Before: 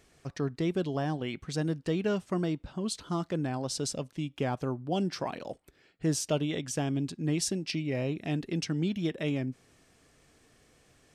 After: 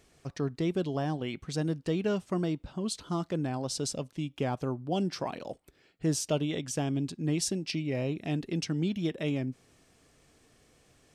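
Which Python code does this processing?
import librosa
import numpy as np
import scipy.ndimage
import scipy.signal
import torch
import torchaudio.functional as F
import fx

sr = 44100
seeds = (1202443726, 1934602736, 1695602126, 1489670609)

y = fx.peak_eq(x, sr, hz=1700.0, db=-2.5, octaves=0.77)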